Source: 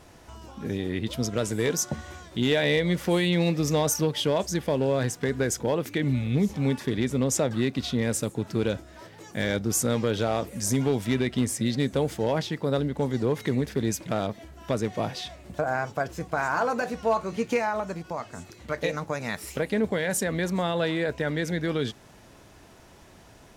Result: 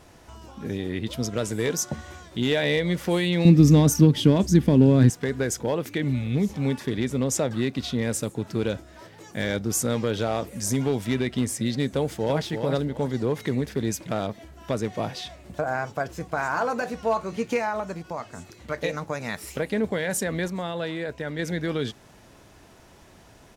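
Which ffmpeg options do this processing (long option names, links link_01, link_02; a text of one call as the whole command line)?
ffmpeg -i in.wav -filter_complex "[0:a]asettb=1/sr,asplit=3[link_01][link_02][link_03];[link_01]atrim=end=3.454[link_04];[link_02]atrim=start=3.45:end=5.1,asetpts=PTS-STARTPTS,afade=type=in:duration=0.004:curve=qsin,afade=type=out:start_time=1.646:duration=0.004:curve=qsin,lowshelf=frequency=390:width_type=q:width=1.5:gain=11[link_05];[link_03]atrim=start=5.096[link_06];[link_04][link_05]acrossfade=duration=0.004:curve1=hsin:curve2=qsin[link_07];[link_07][link_06]acrossfade=duration=0.004:curve1=qsin:curve2=hsin,asplit=2[link_08][link_09];[link_09]afade=type=in:start_time=11.91:duration=0.01,afade=type=out:start_time=12.43:duration=0.01,aecho=0:1:340|680|1020:0.501187|0.125297|0.0313242[link_10];[link_08][link_10]amix=inputs=2:normalize=0,asplit=3[link_11][link_12][link_13];[link_11]atrim=end=20.482[link_14];[link_12]atrim=start=20.478:end=21.392,asetpts=PTS-STARTPTS,volume=-4dB[link_15];[link_13]atrim=start=21.388[link_16];[link_14][link_15]acrossfade=duration=0.004:curve1=hsin:curve2=hsin[link_17];[link_17][link_16]acrossfade=duration=0.004:curve1=hsin:curve2=hsin" out.wav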